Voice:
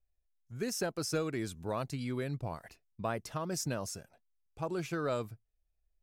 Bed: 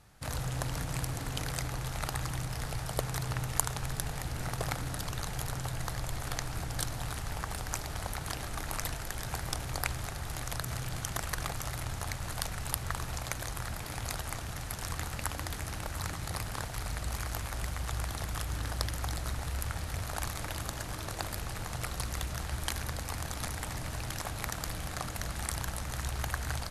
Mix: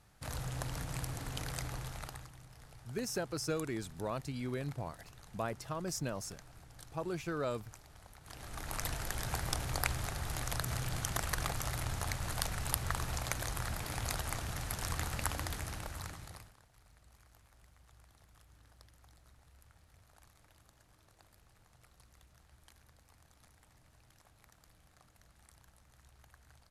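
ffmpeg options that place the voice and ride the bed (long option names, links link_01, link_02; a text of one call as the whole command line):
ffmpeg -i stem1.wav -i stem2.wav -filter_complex "[0:a]adelay=2350,volume=-2.5dB[link_01];[1:a]volume=14dB,afade=type=out:start_time=1.75:duration=0.56:silence=0.188365,afade=type=in:start_time=8.22:duration=0.8:silence=0.112202,afade=type=out:start_time=15.31:duration=1.24:silence=0.0446684[link_02];[link_01][link_02]amix=inputs=2:normalize=0" out.wav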